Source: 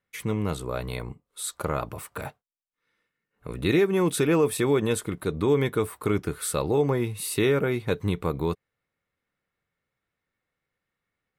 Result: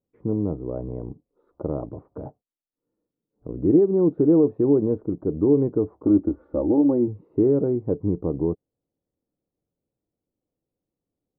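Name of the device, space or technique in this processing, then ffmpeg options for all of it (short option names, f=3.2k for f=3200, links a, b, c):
under water: -filter_complex "[0:a]asettb=1/sr,asplit=3[a][b][c];[a]atrim=end=6.044[d];[b]atrim=start=6.04:end=7.08,asetpts=PTS-STARTPTS,afade=t=in:d=0.004:c=qsin,afade=t=out:st=1.036:d=0.004:c=qsin,aecho=1:1:3.5:0.75,atrim=end_sample=45864[e];[c]atrim=start=7.076[f];[d][e]acrossfade=d=0.004:c1=hsin:c2=qsin[g];[g][f]acrossfade=d=0.004:c1=qsin:c2=hsin,lowpass=f=720:w=0.5412,lowpass=f=720:w=1.3066,equalizer=f=300:t=o:w=0.59:g=9"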